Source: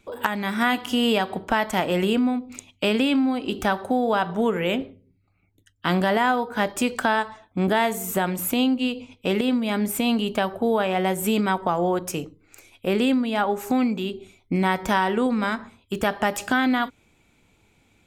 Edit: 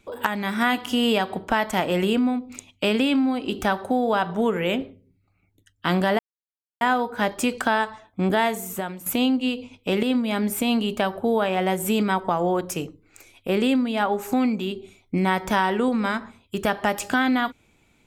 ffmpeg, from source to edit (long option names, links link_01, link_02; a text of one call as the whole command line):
ffmpeg -i in.wav -filter_complex "[0:a]asplit=3[link_01][link_02][link_03];[link_01]atrim=end=6.19,asetpts=PTS-STARTPTS,afade=type=out:start_time=6.186:duration=0.004:curve=hsin,apad=pad_dur=0.62[link_04];[link_02]atrim=start=6.19:end=8.44,asetpts=PTS-STARTPTS,afade=type=in:duration=0.004:curve=hsin,afade=type=out:start_time=1.6:duration=0.65:silence=0.211349[link_05];[link_03]atrim=start=8.44,asetpts=PTS-STARTPTS,afade=type=in:duration=0.004:curve=hsin:silence=0.211349[link_06];[link_04][link_05][link_06]concat=n=3:v=0:a=1" out.wav